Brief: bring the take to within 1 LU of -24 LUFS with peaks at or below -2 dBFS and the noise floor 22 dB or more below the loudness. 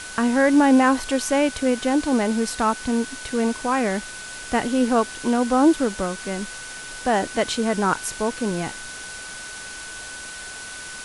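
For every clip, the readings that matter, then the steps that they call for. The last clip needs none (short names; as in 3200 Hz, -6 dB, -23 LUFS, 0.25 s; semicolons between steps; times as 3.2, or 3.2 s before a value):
steady tone 1500 Hz; tone level -37 dBFS; noise floor -36 dBFS; noise floor target -44 dBFS; loudness -21.5 LUFS; peak -6.0 dBFS; loudness target -24.0 LUFS
-> notch 1500 Hz, Q 30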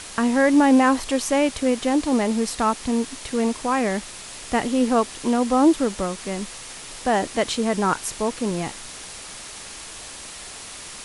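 steady tone none; noise floor -38 dBFS; noise floor target -44 dBFS
-> noise print and reduce 6 dB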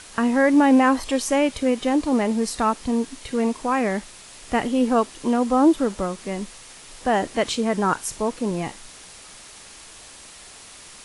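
noise floor -44 dBFS; loudness -22.0 LUFS; peak -6.5 dBFS; loudness target -24.0 LUFS
-> gain -2 dB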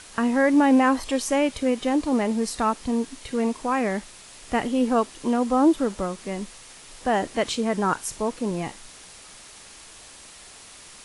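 loudness -24.0 LUFS; peak -8.5 dBFS; noise floor -46 dBFS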